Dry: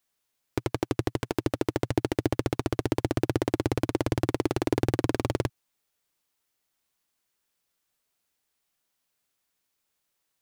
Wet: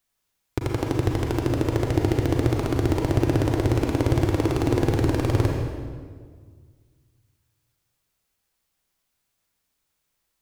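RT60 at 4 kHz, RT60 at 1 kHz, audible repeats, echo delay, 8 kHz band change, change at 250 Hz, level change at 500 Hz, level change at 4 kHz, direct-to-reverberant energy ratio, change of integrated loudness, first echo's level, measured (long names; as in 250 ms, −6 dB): 1.3 s, 1.6 s, no echo audible, no echo audible, +2.5 dB, +4.5 dB, +4.0 dB, +2.5 dB, 0.0 dB, +5.5 dB, no echo audible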